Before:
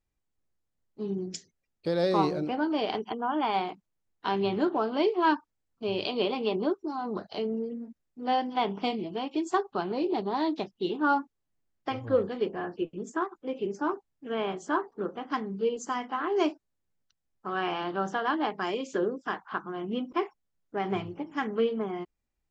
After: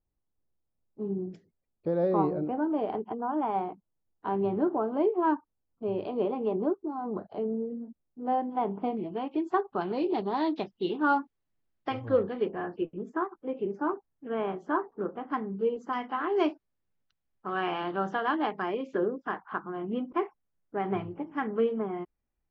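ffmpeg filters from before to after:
-af "asetnsamples=n=441:p=0,asendcmd='8.97 lowpass f 1800;9.81 lowpass f 3800;12.19 lowpass f 2500;12.86 lowpass f 1700;15.93 lowpass f 3200;18.62 lowpass f 1900',lowpass=1000"

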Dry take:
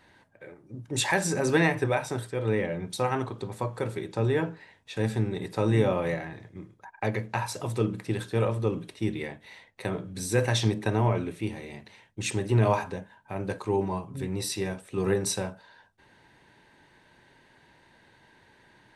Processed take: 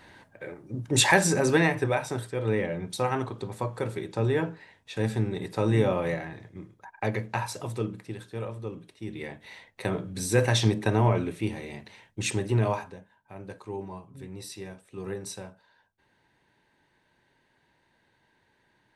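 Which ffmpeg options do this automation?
-af "volume=7.5,afade=t=out:st=0.99:d=0.63:silence=0.473151,afade=t=out:st=7.35:d=0.82:silence=0.354813,afade=t=in:st=9.06:d=0.4:silence=0.281838,afade=t=out:st=12.22:d=0.73:silence=0.266073"

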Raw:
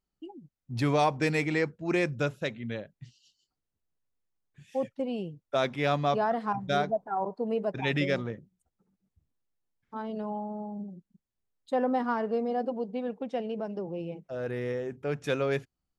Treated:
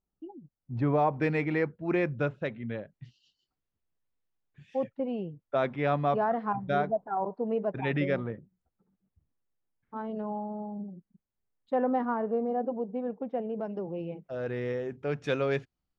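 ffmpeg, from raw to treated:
-af "asetnsamples=n=441:p=0,asendcmd='1.13 lowpass f 2100;2.94 lowpass f 3500;4.84 lowpass f 2000;12.05 lowpass f 1300;13.61 lowpass f 2800;14.3 lowpass f 4900',lowpass=1200"

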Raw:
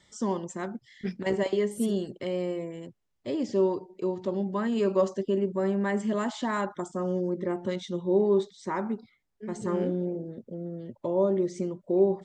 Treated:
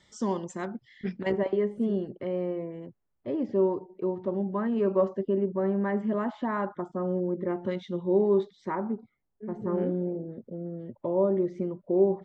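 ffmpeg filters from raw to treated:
-af "asetnsamples=n=441:p=0,asendcmd='0.65 lowpass f 3500;1.32 lowpass f 1600;7.48 lowpass f 2700;8.75 lowpass f 1100;9.78 lowpass f 1900',lowpass=7000"

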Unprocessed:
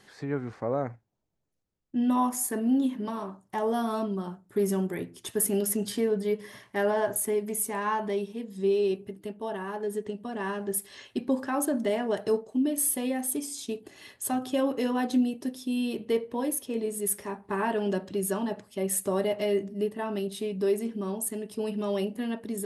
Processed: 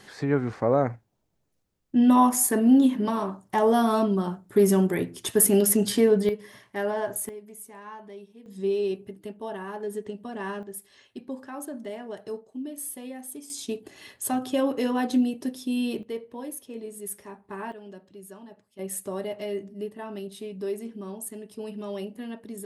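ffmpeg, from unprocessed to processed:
-af "asetnsamples=n=441:p=0,asendcmd='6.29 volume volume -2dB;7.29 volume volume -13.5dB;8.46 volume volume -1dB;10.63 volume volume -9dB;13.5 volume volume 2dB;16.03 volume volume -7dB;17.72 volume volume -15.5dB;18.79 volume volume -5dB',volume=2.24"

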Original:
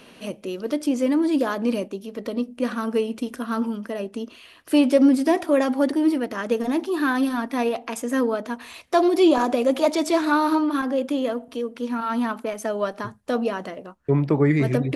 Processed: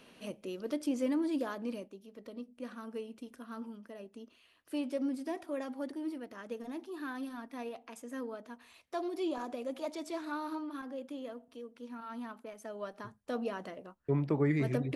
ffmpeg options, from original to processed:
-af "volume=0.75,afade=t=out:st=1.07:d=0.87:silence=0.398107,afade=t=in:st=12.61:d=1.12:silence=0.398107"

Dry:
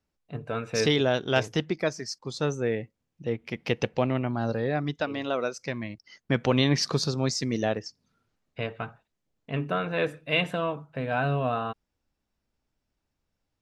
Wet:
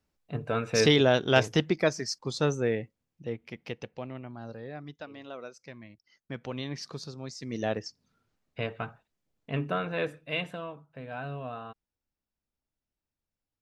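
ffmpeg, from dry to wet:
-af "volume=5.31,afade=t=out:st=2.26:d=1.05:silence=0.421697,afade=t=out:st=3.31:d=0.54:silence=0.398107,afade=t=in:st=7.38:d=0.42:silence=0.237137,afade=t=out:st=9.54:d=1.15:silence=0.316228"

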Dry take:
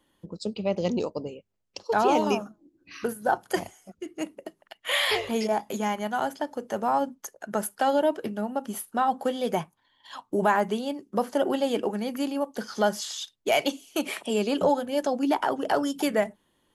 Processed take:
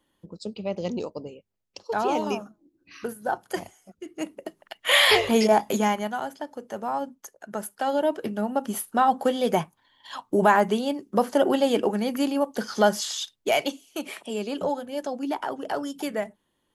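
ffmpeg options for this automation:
-af "volume=5.62,afade=t=in:st=3.99:d=0.98:silence=0.316228,afade=t=out:st=5.71:d=0.5:silence=0.281838,afade=t=in:st=7.76:d=0.82:silence=0.398107,afade=t=out:st=13.2:d=0.63:silence=0.375837"

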